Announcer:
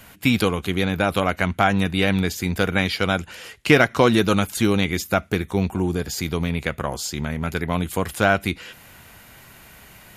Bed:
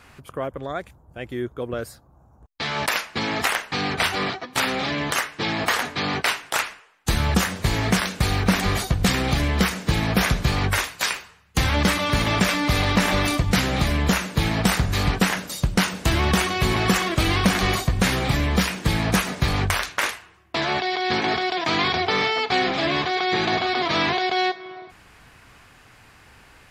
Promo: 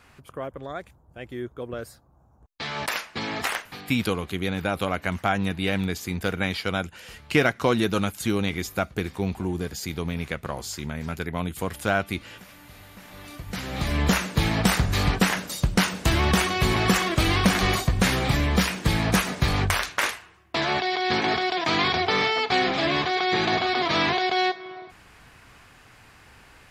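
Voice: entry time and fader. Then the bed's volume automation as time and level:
3.65 s, −5.5 dB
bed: 0:03.57 −5 dB
0:04.06 −28.5 dB
0:12.98 −28.5 dB
0:14.01 −1 dB

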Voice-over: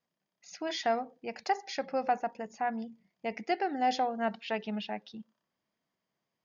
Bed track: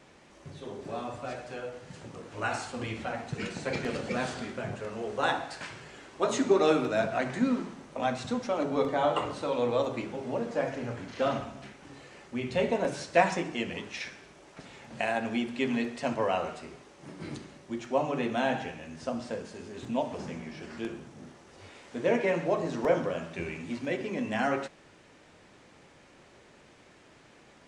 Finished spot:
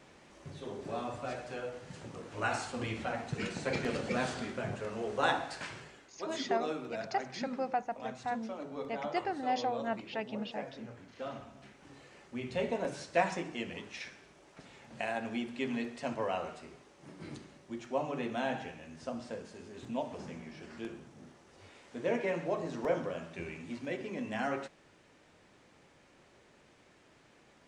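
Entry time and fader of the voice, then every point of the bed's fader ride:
5.65 s, −4.0 dB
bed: 0:05.79 −1.5 dB
0:06.11 −13 dB
0:11.31 −13 dB
0:11.87 −6 dB

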